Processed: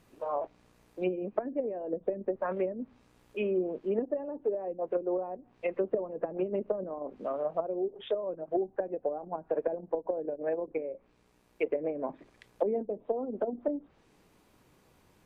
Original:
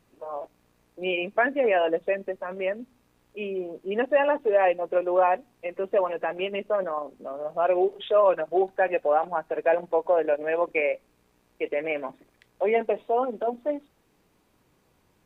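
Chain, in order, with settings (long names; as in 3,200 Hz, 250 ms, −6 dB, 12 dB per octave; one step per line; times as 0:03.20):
speech leveller within 3 dB 0.5 s
treble cut that deepens with the level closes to 300 Hz, closed at −21.5 dBFS
level −1 dB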